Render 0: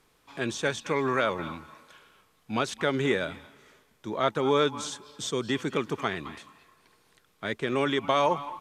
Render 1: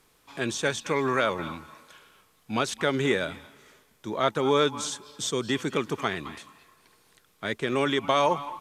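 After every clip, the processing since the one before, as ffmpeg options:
-af "highshelf=f=5800:g=6,volume=1.12"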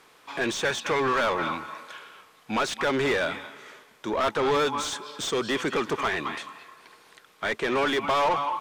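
-filter_complex "[0:a]asplit=2[s0][s1];[s1]highpass=f=720:p=1,volume=17.8,asoftclip=type=tanh:threshold=0.335[s2];[s0][s2]amix=inputs=2:normalize=0,lowpass=f=2200:p=1,volume=0.501,volume=0.501"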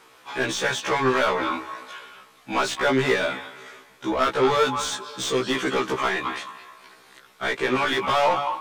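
-af "afftfilt=real='re*1.73*eq(mod(b,3),0)':imag='im*1.73*eq(mod(b,3),0)':win_size=2048:overlap=0.75,volume=1.88"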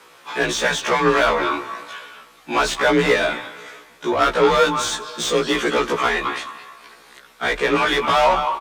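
-filter_complex "[0:a]afreqshift=36,asplit=5[s0][s1][s2][s3][s4];[s1]adelay=88,afreqshift=-40,volume=0.0631[s5];[s2]adelay=176,afreqshift=-80,volume=0.0389[s6];[s3]adelay=264,afreqshift=-120,volume=0.0243[s7];[s4]adelay=352,afreqshift=-160,volume=0.015[s8];[s0][s5][s6][s7][s8]amix=inputs=5:normalize=0,volume=1.68"

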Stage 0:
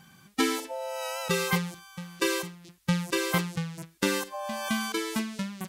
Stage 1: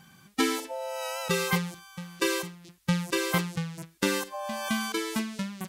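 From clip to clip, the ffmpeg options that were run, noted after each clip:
-af anull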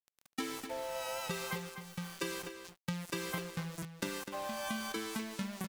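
-filter_complex "[0:a]acompressor=threshold=0.0126:ratio=5,aeval=exprs='val(0)*gte(abs(val(0)),0.00596)':c=same,asplit=2[s0][s1];[s1]adelay=250.7,volume=0.398,highshelf=f=4000:g=-5.64[s2];[s0][s2]amix=inputs=2:normalize=0,volume=1.12"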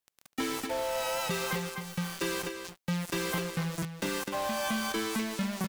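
-af "asoftclip=type=hard:threshold=0.0168,volume=2.66"

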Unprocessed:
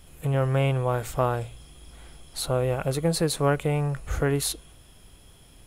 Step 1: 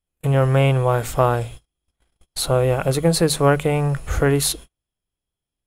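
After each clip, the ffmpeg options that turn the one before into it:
-af "bandreject=f=50:t=h:w=6,bandreject=f=100:t=h:w=6,bandreject=f=150:t=h:w=6,bandreject=f=200:t=h:w=6,bandreject=f=250:t=h:w=6,agate=range=0.01:threshold=0.00891:ratio=16:detection=peak,volume=2.24"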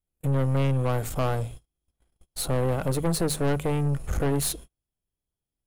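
-af "equalizer=f=2600:w=0.34:g=-7.5,aeval=exprs='(tanh(11.2*val(0)+0.5)-tanh(0.5))/11.2':c=same"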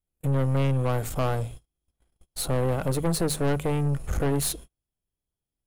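-af anull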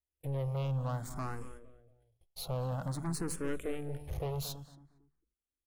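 -filter_complex "[0:a]asplit=2[s0][s1];[s1]adelay=228,lowpass=f=1500:p=1,volume=0.266,asplit=2[s2][s3];[s3]adelay=228,lowpass=f=1500:p=1,volume=0.28,asplit=2[s4][s5];[s5]adelay=228,lowpass=f=1500:p=1,volume=0.28[s6];[s0][s2][s4][s6]amix=inputs=4:normalize=0,asplit=2[s7][s8];[s8]afreqshift=0.53[s9];[s7][s9]amix=inputs=2:normalize=1,volume=0.376"

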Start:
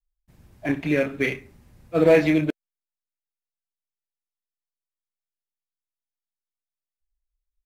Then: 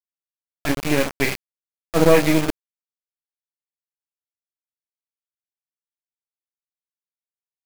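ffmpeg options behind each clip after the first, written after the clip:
-af "aeval=exprs='if(lt(val(0),0),0.251*val(0),val(0))':c=same,acrusher=bits=4:mix=0:aa=0.000001,volume=1.78"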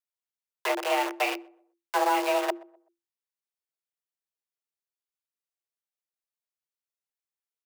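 -filter_complex "[0:a]acrossover=split=270|2800[s0][s1][s2];[s0]acompressor=threshold=0.0282:ratio=4[s3];[s1]acompressor=threshold=0.0794:ratio=4[s4];[s2]acompressor=threshold=0.0141:ratio=4[s5];[s3][s4][s5]amix=inputs=3:normalize=0,afreqshift=340,asplit=2[s6][s7];[s7]adelay=126,lowpass=f=910:p=1,volume=0.0891,asplit=2[s8][s9];[s9]adelay=126,lowpass=f=910:p=1,volume=0.39,asplit=2[s10][s11];[s11]adelay=126,lowpass=f=910:p=1,volume=0.39[s12];[s6][s8][s10][s12]amix=inputs=4:normalize=0,volume=0.841"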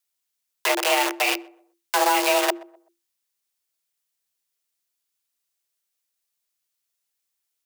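-af "highshelf=f=2300:g=10.5,alimiter=limit=0.178:level=0:latency=1:release=83,volume=1.78"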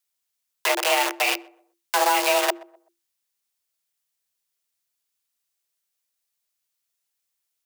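-af "equalizer=f=320:t=o:w=0.54:g=-5"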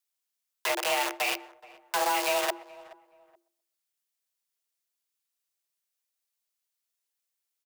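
-filter_complex "[0:a]highpass=230,asoftclip=type=tanh:threshold=0.211,asplit=2[s0][s1];[s1]adelay=425,lowpass=f=1400:p=1,volume=0.112,asplit=2[s2][s3];[s3]adelay=425,lowpass=f=1400:p=1,volume=0.29[s4];[s0][s2][s4]amix=inputs=3:normalize=0,volume=0.562"

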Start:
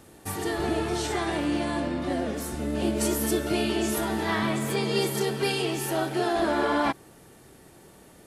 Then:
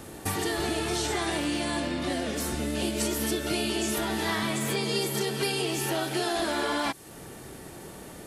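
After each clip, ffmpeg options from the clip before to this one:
-filter_complex "[0:a]acrossover=split=2100|5000[s0][s1][s2];[s0]acompressor=threshold=0.0126:ratio=4[s3];[s1]acompressor=threshold=0.00562:ratio=4[s4];[s2]acompressor=threshold=0.00631:ratio=4[s5];[s3][s4][s5]amix=inputs=3:normalize=0,volume=2.66"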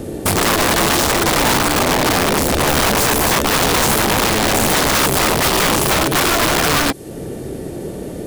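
-af "lowshelf=f=710:t=q:w=1.5:g=10,aeval=exprs='(mod(6.68*val(0)+1,2)-1)/6.68':c=same,volume=2.11"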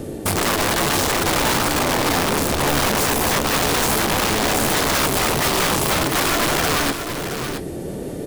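-af "areverse,acompressor=mode=upward:threshold=0.112:ratio=2.5,areverse,flanger=delay=6.7:depth=5.6:regen=82:speed=1.1:shape=sinusoidal,aecho=1:1:673:0.376"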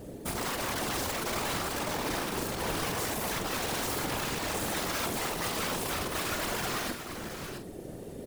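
-filter_complex "[0:a]acrusher=bits=7:mix=0:aa=0.000001,afftfilt=real='hypot(re,im)*cos(2*PI*random(0))':imag='hypot(re,im)*sin(2*PI*random(1))':win_size=512:overlap=0.75,asplit=2[s0][s1];[s1]adelay=46,volume=0.355[s2];[s0][s2]amix=inputs=2:normalize=0,volume=0.398"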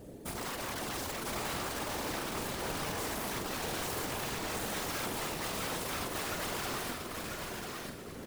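-af "aecho=1:1:991:0.631,volume=0.531"

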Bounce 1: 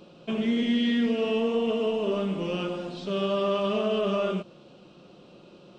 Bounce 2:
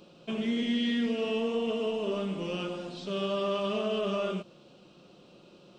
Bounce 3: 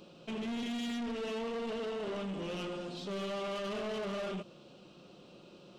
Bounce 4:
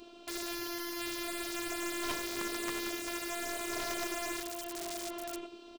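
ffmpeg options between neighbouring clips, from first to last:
-af "highshelf=f=3900:g=6.5,volume=0.596"
-af "asoftclip=type=tanh:threshold=0.0178"
-af "aecho=1:1:1045:0.501,afftfilt=real='hypot(re,im)*cos(PI*b)':imag='0':win_size=512:overlap=0.75,aeval=exprs='(mod(63.1*val(0)+1,2)-1)/63.1':c=same,volume=2.24"

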